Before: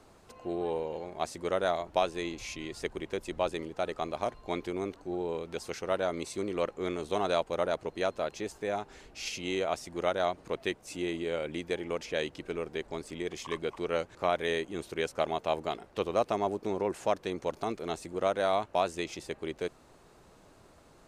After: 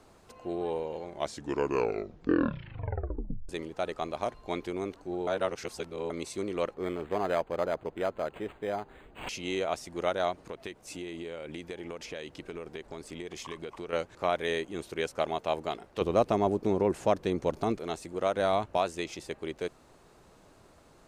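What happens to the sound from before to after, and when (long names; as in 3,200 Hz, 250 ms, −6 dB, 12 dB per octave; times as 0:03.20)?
0:01.03: tape stop 2.46 s
0:05.27–0:06.10: reverse
0:06.74–0:09.29: linearly interpolated sample-rate reduction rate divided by 8×
0:10.32–0:13.93: downward compressor, threshold −35 dBFS
0:16.01–0:17.79: low-shelf EQ 400 Hz +9.5 dB
0:18.36–0:18.77: low-shelf EQ 220 Hz +9 dB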